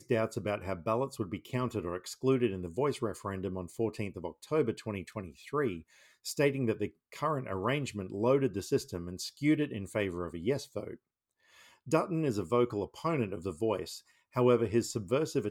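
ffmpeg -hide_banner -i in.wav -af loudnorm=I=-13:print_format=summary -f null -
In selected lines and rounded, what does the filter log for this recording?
Input Integrated:    -32.8 LUFS
Input True Peak:     -13.0 dBTP
Input LRA:             2.6 LU
Input Threshold:     -43.2 LUFS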